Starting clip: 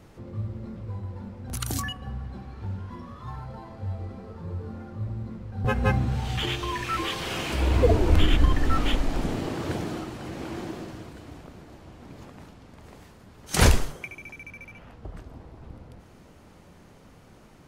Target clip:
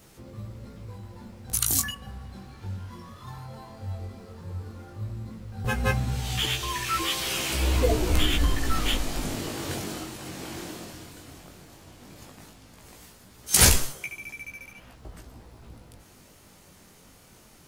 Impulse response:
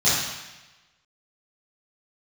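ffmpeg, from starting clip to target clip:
-af "flanger=delay=15:depth=7.9:speed=0.14,crystalizer=i=4.5:c=0,acrusher=bits=11:mix=0:aa=0.000001,volume=0.891"

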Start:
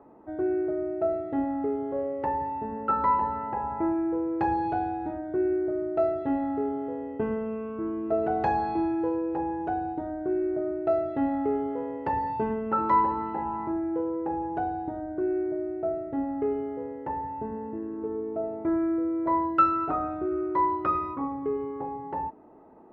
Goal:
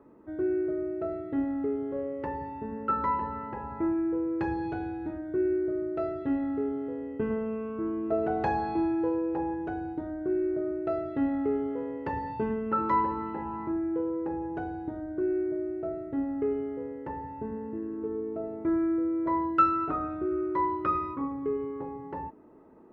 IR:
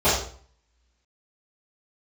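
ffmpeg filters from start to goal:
-af "asetnsamples=n=441:p=0,asendcmd='7.3 equalizer g -4;9.54 equalizer g -10.5',equalizer=f=760:t=o:w=0.58:g=-13.5"

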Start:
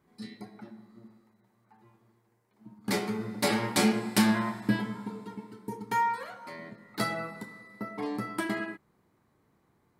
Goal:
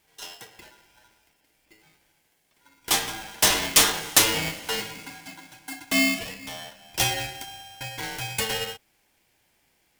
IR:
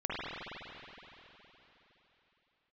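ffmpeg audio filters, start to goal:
-af "highpass=530,highshelf=f=2300:g=12,aeval=exprs='val(0)*sgn(sin(2*PI*1200*n/s))':c=same,volume=1.5"

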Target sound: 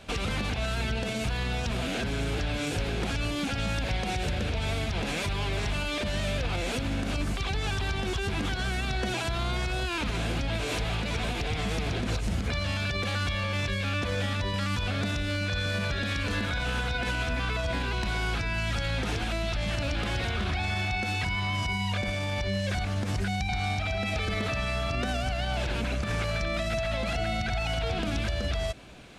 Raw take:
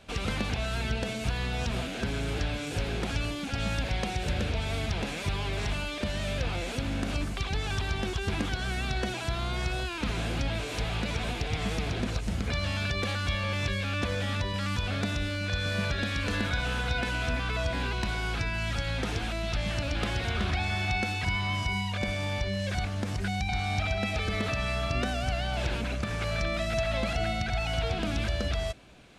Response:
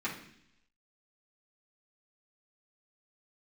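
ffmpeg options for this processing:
-af "alimiter=level_in=1.26:limit=0.0631:level=0:latency=1:release=87,volume=0.794,volume=1.88"

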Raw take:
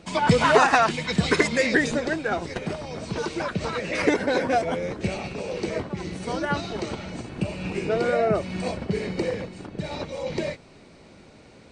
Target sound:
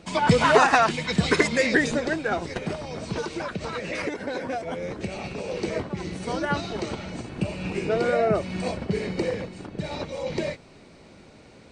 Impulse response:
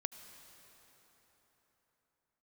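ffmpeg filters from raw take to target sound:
-filter_complex "[0:a]asettb=1/sr,asplit=3[s0][s1][s2];[s0]atrim=end=3.204[s3];[s1]atrim=start=3.2:end=5.49,asetpts=PTS-STARTPTS,afade=t=in:d=0.004:c=qsin,afade=t=out:st=2.286:d=0.004:c=qsin,acompressor=threshold=0.0447:ratio=6[s4];[s2]atrim=start=5.486[s5];[s3][s4]acrossfade=d=0.004:c1=hsin:c2=qsin[s6];[s6][s5]acrossfade=d=0.004:c1=qsin:c2=hsin"

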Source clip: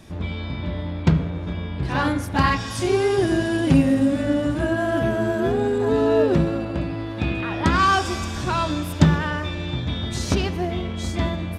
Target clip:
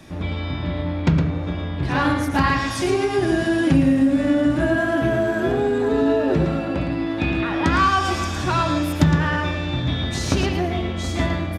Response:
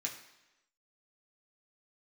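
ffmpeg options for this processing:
-filter_complex "[0:a]asplit=2[s0][s1];[s1]aecho=0:1:112:0.473[s2];[s0][s2]amix=inputs=2:normalize=0,acrossover=split=130[s3][s4];[s4]acompressor=threshold=0.112:ratio=4[s5];[s3][s5]amix=inputs=2:normalize=0,asplit=2[s6][s7];[1:a]atrim=start_sample=2205,lowpass=4400[s8];[s7][s8]afir=irnorm=-1:irlink=0,volume=0.501[s9];[s6][s9]amix=inputs=2:normalize=0,volume=1.12"

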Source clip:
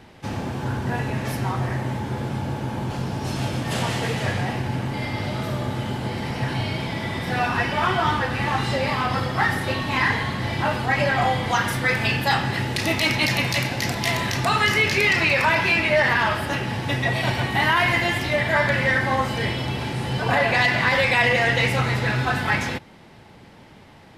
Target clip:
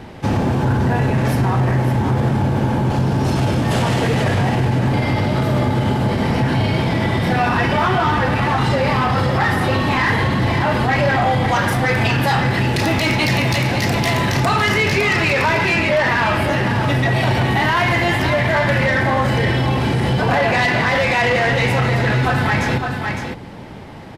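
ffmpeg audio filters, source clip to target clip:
-filter_complex "[0:a]tiltshelf=f=1400:g=3.5,asoftclip=type=tanh:threshold=0.178,asplit=2[s0][s1];[s1]aecho=0:1:559:0.335[s2];[s0][s2]amix=inputs=2:normalize=0,alimiter=level_in=8.41:limit=0.891:release=50:level=0:latency=1,volume=0.355"

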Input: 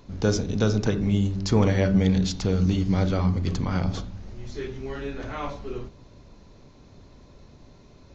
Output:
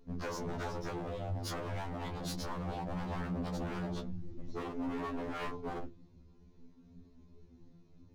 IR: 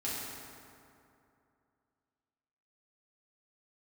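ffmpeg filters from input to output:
-af "afftdn=nr=14:nf=-39,flanger=delay=16:depth=2.8:speed=0.29,equalizer=f=330:t=o:w=1.2:g=9,acompressor=threshold=0.0501:ratio=8,bandreject=f=590:w=12,aeval=exprs='0.0282*(abs(mod(val(0)/0.0282+3,4)-2)-1)':c=same,afftfilt=real='re*2*eq(mod(b,4),0)':imag='im*2*eq(mod(b,4),0)':win_size=2048:overlap=0.75"

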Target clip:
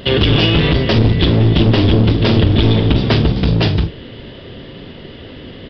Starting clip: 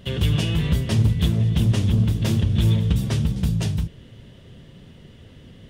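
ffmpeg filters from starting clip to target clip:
-filter_complex "[0:a]aresample=11025,aeval=exprs='clip(val(0),-1,0.0944)':c=same,aresample=44100,lowshelf=f=230:t=q:w=1.5:g=-6.5,asplit=2[s0][s1];[s1]adelay=43,volume=0.211[s2];[s0][s2]amix=inputs=2:normalize=0,alimiter=level_in=7.08:limit=0.891:release=50:level=0:latency=1,volume=0.891"

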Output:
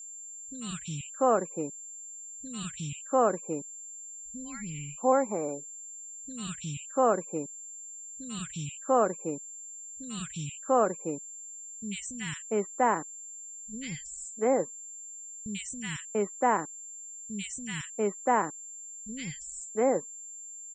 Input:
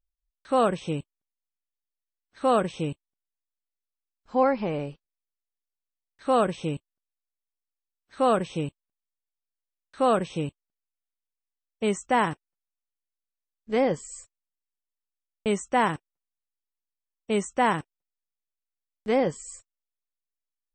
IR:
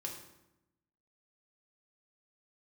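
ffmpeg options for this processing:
-filter_complex "[0:a]acrossover=split=200|2000[s0][s1][s2];[s2]adelay=90[s3];[s1]adelay=690[s4];[s0][s4][s3]amix=inputs=3:normalize=0,aeval=exprs='val(0)+0.01*sin(2*PI*7300*n/s)':c=same,afftfilt=real='re*gte(hypot(re,im),0.00501)':imag='im*gte(hypot(re,im),0.00501)':win_size=1024:overlap=0.75,volume=0.841"

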